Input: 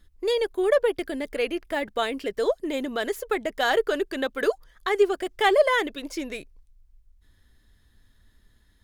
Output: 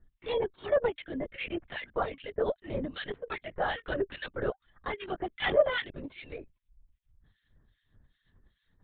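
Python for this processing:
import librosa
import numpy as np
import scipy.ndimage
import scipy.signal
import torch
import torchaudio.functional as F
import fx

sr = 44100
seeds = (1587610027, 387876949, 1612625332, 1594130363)

y = fx.harmonic_tremolo(x, sr, hz=2.5, depth_pct=100, crossover_hz=1500.0)
y = fx.lpc_vocoder(y, sr, seeds[0], excitation='whisper', order=16)
y = y * 10.0 ** (-3.0 / 20.0)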